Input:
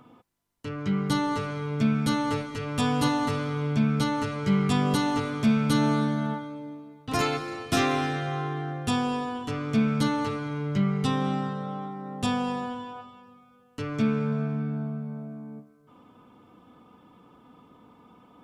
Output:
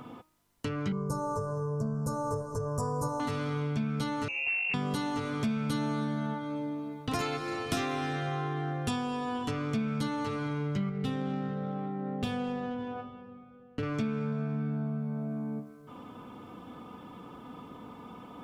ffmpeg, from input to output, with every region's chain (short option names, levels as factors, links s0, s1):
-filter_complex "[0:a]asettb=1/sr,asplit=3[s0][s1][s2];[s0]atrim=end=0.924[s3];[s1]atrim=start=0.92:end=3.2,asetpts=PTS-STARTPTS,afade=t=in:d=0.004:c=qsin,afade=t=out:st=2.276:d=0.004:c=qsin,asuperstop=centerf=2700:order=8:qfactor=0.58,aecho=1:1:1.9:0.73,atrim=end_sample=100548[s4];[s2]atrim=start=3.196[s5];[s3][s4]acrossfade=d=0.004:c1=hsin:c2=qsin[s6];[s6][s5]acrossfade=d=0.004:c1=qsin:c2=hsin,asettb=1/sr,asplit=3[s7][s8][s9];[s7]atrim=end=4.284[s10];[s8]atrim=start=4.28:end=4.74,asetpts=PTS-STARTPTS,afade=t=in:d=0.004:c=qsin,afade=t=out:st=0.456:d=0.004:c=qsin,asuperstop=centerf=1300:order=4:qfactor=0.89,asoftclip=type=hard:threshold=0.075,lowpass=f=2500:t=q:w=0.5098,lowpass=f=2500:t=q:w=0.6013,lowpass=f=2500:t=q:w=0.9,lowpass=f=2500:t=q:w=2.563,afreqshift=-2900[s11];[s9]atrim=start=4.736[s12];[s10][s11]acrossfade=d=0.004:c1=hsin:c2=qsin[s13];[s13][s12]acrossfade=d=0.004:c1=qsin:c2=hsin,asettb=1/sr,asplit=3[s14][s15][s16];[s14]atrim=end=10.894[s17];[s15]atrim=start=10.89:end=13.83,asetpts=PTS-STARTPTS,afade=t=in:d=0.004:c=qsin,afade=t=out:st=2.936:d=0.004:c=qsin,equalizer=f=1000:t=o:w=0.6:g=-11.5,bandreject=f=50:t=h:w=6,bandreject=f=100:t=h:w=6,bandreject=f=150:t=h:w=6,bandreject=f=200:t=h:w=6,bandreject=f=250:t=h:w=6,bandreject=f=300:t=h:w=6,bandreject=f=350:t=h:w=6,bandreject=f=400:t=h:w=6,adynamicsmooth=sensitivity=4.5:basefreq=1600[s18];[s16]atrim=start=13.826[s19];[s17][s18]acrossfade=d=0.004:c1=hsin:c2=qsin[s20];[s20][s19]acrossfade=d=0.004:c1=qsin:c2=hsin,bandreject=f=312.1:t=h:w=4,bandreject=f=624.2:t=h:w=4,bandreject=f=936.3:t=h:w=4,bandreject=f=1248.4:t=h:w=4,bandreject=f=1560.5:t=h:w=4,bandreject=f=1872.6:t=h:w=4,bandreject=f=2184.7:t=h:w=4,bandreject=f=2496.8:t=h:w=4,bandreject=f=2808.9:t=h:w=4,bandreject=f=3121:t=h:w=4,bandreject=f=3433.1:t=h:w=4,bandreject=f=3745.2:t=h:w=4,bandreject=f=4057.3:t=h:w=4,bandreject=f=4369.4:t=h:w=4,bandreject=f=4681.5:t=h:w=4,bandreject=f=4993.6:t=h:w=4,bandreject=f=5305.7:t=h:w=4,bandreject=f=5617.8:t=h:w=4,bandreject=f=5929.9:t=h:w=4,bandreject=f=6242:t=h:w=4,bandreject=f=6554.1:t=h:w=4,bandreject=f=6866.2:t=h:w=4,bandreject=f=7178.3:t=h:w=4,bandreject=f=7490.4:t=h:w=4,bandreject=f=7802.5:t=h:w=4,bandreject=f=8114.6:t=h:w=4,bandreject=f=8426.7:t=h:w=4,bandreject=f=8738.8:t=h:w=4,bandreject=f=9050.9:t=h:w=4,bandreject=f=9363:t=h:w=4,bandreject=f=9675.1:t=h:w=4,bandreject=f=9987.2:t=h:w=4,bandreject=f=10299.3:t=h:w=4,bandreject=f=10611.4:t=h:w=4,bandreject=f=10923.5:t=h:w=4,bandreject=f=11235.6:t=h:w=4,bandreject=f=11547.7:t=h:w=4,bandreject=f=11859.8:t=h:w=4,bandreject=f=12171.9:t=h:w=4,acompressor=threshold=0.01:ratio=4,volume=2.51"